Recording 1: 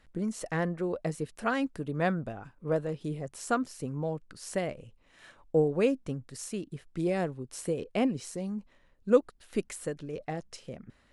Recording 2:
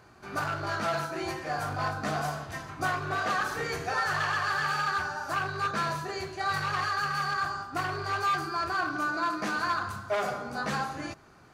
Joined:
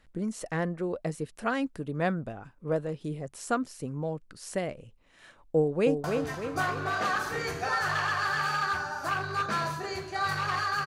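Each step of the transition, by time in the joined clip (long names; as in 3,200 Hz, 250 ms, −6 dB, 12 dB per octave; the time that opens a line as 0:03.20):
recording 1
0:05.56–0:06.04: delay throw 300 ms, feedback 50%, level −5 dB
0:06.04: continue with recording 2 from 0:02.29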